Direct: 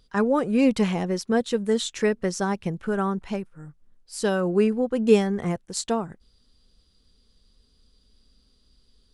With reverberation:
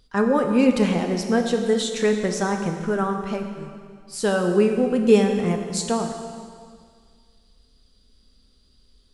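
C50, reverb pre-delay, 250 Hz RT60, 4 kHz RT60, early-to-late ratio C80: 5.5 dB, 6 ms, 1.9 s, 1.9 s, 7.0 dB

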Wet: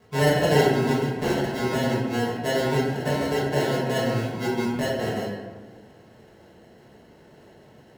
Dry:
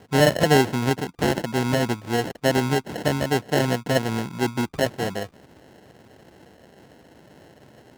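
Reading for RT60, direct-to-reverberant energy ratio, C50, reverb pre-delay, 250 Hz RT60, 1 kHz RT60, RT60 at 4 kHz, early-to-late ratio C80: 1.3 s, −7.5 dB, 1.0 dB, 4 ms, 1.7 s, 1.2 s, 0.75 s, 3.0 dB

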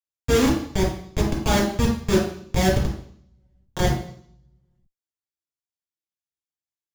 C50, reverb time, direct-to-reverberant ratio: 4.5 dB, 0.60 s, −4.5 dB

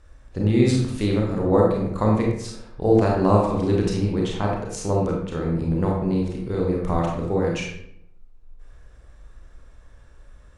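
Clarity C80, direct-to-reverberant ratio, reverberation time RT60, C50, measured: 5.0 dB, −2.0 dB, 0.75 s, 2.0 dB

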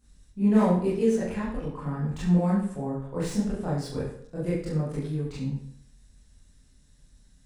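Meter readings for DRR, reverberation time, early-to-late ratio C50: −10.0 dB, 0.60 s, 2.5 dB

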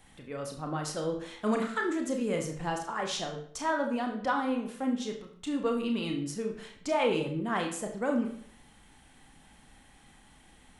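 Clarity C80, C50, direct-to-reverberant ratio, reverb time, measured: 10.5 dB, 7.5 dB, 2.0 dB, 0.60 s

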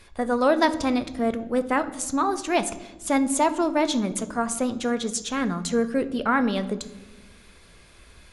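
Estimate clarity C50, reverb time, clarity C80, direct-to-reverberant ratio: 14.5 dB, 1.2 s, 17.0 dB, 10.5 dB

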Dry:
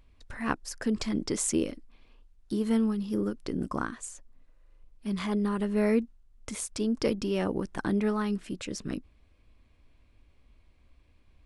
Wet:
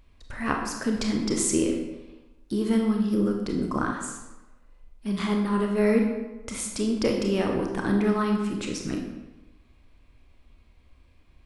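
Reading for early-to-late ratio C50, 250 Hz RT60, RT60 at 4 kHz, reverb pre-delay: 4.0 dB, 1.1 s, 0.75 s, 26 ms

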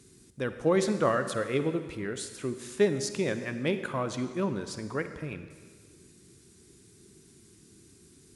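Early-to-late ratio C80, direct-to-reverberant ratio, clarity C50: 11.0 dB, 9.5 dB, 10.0 dB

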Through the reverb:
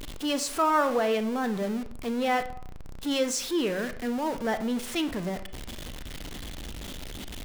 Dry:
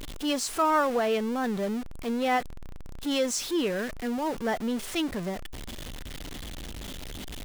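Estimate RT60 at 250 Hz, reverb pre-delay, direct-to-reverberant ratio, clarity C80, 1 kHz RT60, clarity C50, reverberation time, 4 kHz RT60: 0.55 s, 29 ms, 10.0 dB, 16.5 dB, 0.65 s, 13.0 dB, 0.65 s, 0.40 s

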